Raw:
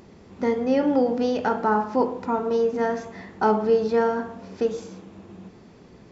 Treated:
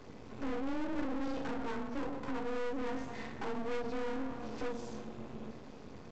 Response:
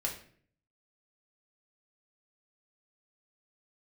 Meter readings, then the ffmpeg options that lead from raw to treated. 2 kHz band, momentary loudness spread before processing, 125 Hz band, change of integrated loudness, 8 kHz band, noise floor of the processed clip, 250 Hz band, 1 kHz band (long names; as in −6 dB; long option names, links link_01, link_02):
−11.0 dB, 12 LU, −9.5 dB, −16.0 dB, can't be measured, −50 dBFS, −12.5 dB, −17.0 dB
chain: -filter_complex "[0:a]aecho=1:1:114:0.168,acrossover=split=260[link_01][link_02];[link_02]acompressor=threshold=-34dB:ratio=6[link_03];[link_01][link_03]amix=inputs=2:normalize=0[link_04];[1:a]atrim=start_sample=2205,asetrate=74970,aresample=44100[link_05];[link_04][link_05]afir=irnorm=-1:irlink=0,afreqshift=29,aeval=exprs='0.158*(cos(1*acos(clip(val(0)/0.158,-1,1)))-cos(1*PI/2))+0.0398*(cos(4*acos(clip(val(0)/0.158,-1,1)))-cos(4*PI/2))':channel_layout=same,aresample=16000,aeval=exprs='max(val(0),0)':channel_layout=same,aresample=44100,volume=4dB"